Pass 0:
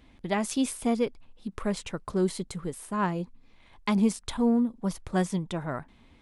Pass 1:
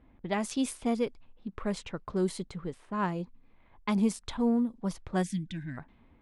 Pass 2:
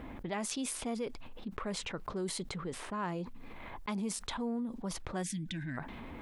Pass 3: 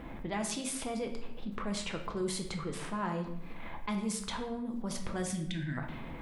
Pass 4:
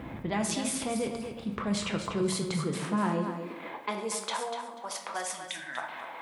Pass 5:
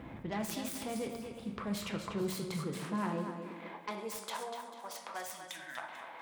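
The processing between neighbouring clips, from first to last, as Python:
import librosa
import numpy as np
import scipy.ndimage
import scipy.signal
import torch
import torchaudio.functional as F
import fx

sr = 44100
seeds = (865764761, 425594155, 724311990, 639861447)

y1 = fx.env_lowpass(x, sr, base_hz=1400.0, full_db=-23.0)
y1 = fx.spec_box(y1, sr, start_s=5.23, length_s=0.55, low_hz=340.0, high_hz=1500.0, gain_db=-25)
y1 = y1 * 10.0 ** (-3.0 / 20.0)
y2 = fx.low_shelf(y1, sr, hz=190.0, db=-7.5)
y2 = fx.env_flatten(y2, sr, amount_pct=70)
y2 = y2 * 10.0 ** (-8.5 / 20.0)
y3 = fx.room_shoebox(y2, sr, seeds[0], volume_m3=250.0, walls='mixed', distance_m=0.73)
y4 = fx.echo_feedback(y3, sr, ms=244, feedback_pct=21, wet_db=-9.0)
y4 = fx.filter_sweep_highpass(y4, sr, from_hz=89.0, to_hz=800.0, start_s=2.03, end_s=4.7, q=1.8)
y4 = y4 * 10.0 ** (4.0 / 20.0)
y5 = fx.self_delay(y4, sr, depth_ms=0.13)
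y5 = y5 + 10.0 ** (-16.0 / 20.0) * np.pad(y5, (int(443 * sr / 1000.0), 0))[:len(y5)]
y5 = y5 * 10.0 ** (-6.5 / 20.0)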